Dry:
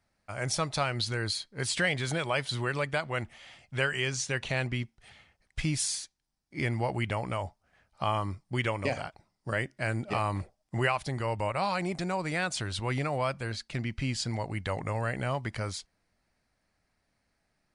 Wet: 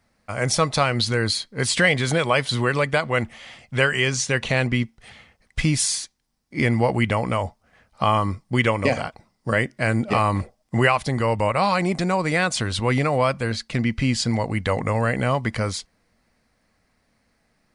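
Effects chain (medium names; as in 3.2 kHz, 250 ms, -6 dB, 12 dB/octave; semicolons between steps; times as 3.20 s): small resonant body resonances 230/480/1100/2000 Hz, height 6 dB; trim +8.5 dB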